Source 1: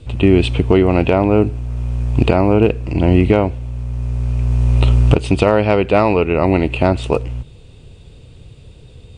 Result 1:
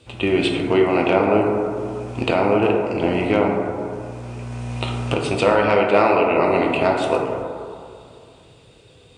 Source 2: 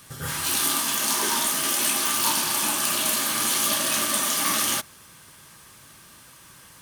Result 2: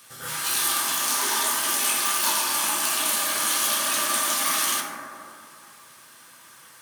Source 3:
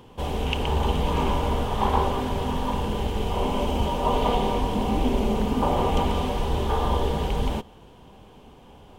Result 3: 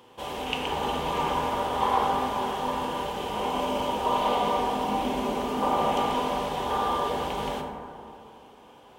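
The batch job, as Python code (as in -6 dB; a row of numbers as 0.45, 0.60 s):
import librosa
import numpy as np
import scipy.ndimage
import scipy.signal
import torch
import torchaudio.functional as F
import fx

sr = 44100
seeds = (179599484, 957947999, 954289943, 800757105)

y = fx.highpass(x, sr, hz=610.0, slope=6)
y = fx.rev_plate(y, sr, seeds[0], rt60_s=2.4, hf_ratio=0.25, predelay_ms=0, drr_db=-0.5)
y = y * librosa.db_to_amplitude(-1.5)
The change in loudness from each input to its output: -4.0, 0.0, -2.0 LU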